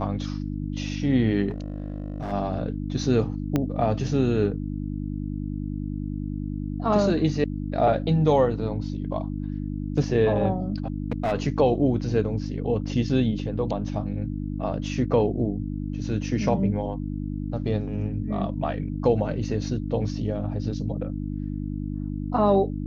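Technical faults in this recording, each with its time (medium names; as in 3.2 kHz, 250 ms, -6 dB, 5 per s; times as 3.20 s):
hum 50 Hz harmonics 6 -30 dBFS
1.49–2.33 s: clipped -26.5 dBFS
3.56 s: pop -11 dBFS
10.88–11.33 s: clipped -20.5 dBFS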